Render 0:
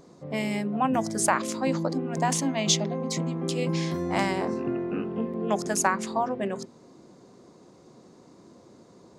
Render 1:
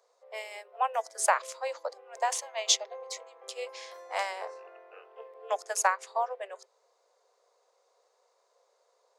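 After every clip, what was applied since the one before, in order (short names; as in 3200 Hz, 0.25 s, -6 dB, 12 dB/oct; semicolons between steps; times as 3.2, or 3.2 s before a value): steep high-pass 460 Hz 72 dB/oct; upward expander 1.5:1, over -42 dBFS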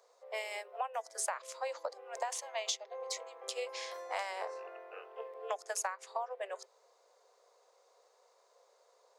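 compressor 6:1, threshold -37 dBFS, peak gain reduction 17 dB; gain +2.5 dB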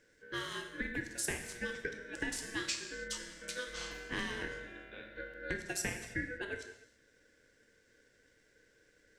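non-linear reverb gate 0.35 s falling, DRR 4 dB; ring modulator 1000 Hz; gain +1.5 dB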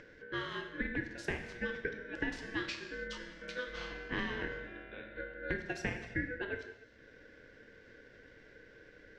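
upward compressor, threshold -47 dBFS; air absorption 250 m; gain +3 dB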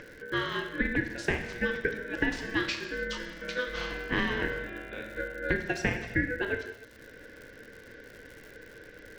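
crackle 130/s -49 dBFS; gain +8 dB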